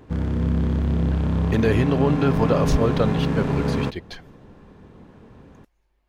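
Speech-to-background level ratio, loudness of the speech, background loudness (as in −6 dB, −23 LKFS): 0.0 dB, −23.5 LKFS, −23.5 LKFS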